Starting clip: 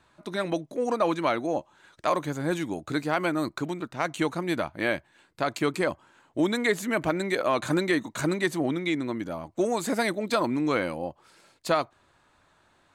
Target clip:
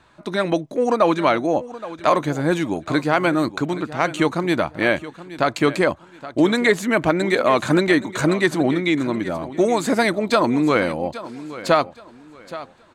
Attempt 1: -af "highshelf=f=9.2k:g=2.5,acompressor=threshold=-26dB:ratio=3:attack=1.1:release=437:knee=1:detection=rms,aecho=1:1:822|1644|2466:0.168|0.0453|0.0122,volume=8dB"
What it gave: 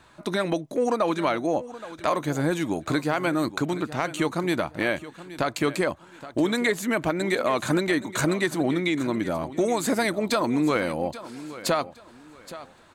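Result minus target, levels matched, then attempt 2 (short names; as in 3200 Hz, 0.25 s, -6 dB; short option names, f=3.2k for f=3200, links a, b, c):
compressor: peak gain reduction +9 dB; 8000 Hz band +5.5 dB
-af "highshelf=f=9.2k:g=-9.5,aecho=1:1:822|1644|2466:0.168|0.0453|0.0122,volume=8dB"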